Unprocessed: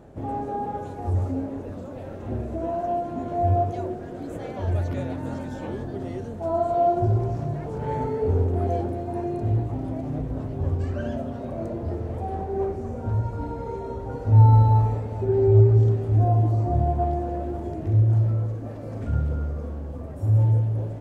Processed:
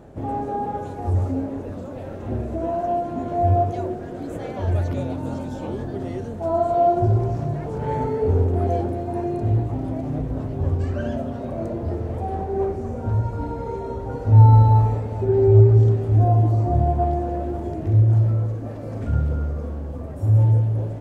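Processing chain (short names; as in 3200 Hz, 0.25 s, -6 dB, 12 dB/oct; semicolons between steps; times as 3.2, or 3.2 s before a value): 4.92–5.79 bell 1800 Hz -10.5 dB 0.44 oct; gain +3 dB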